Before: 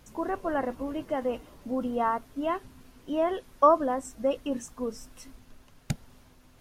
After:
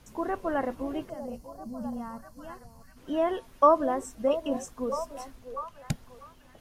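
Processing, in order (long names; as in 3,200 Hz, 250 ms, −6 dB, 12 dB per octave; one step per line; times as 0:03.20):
tape wow and flutter 25 cents
gain on a spectral selection 0:01.10–0:02.97, 240–4,100 Hz −16 dB
echo through a band-pass that steps 646 ms, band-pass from 500 Hz, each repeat 0.7 octaves, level −9 dB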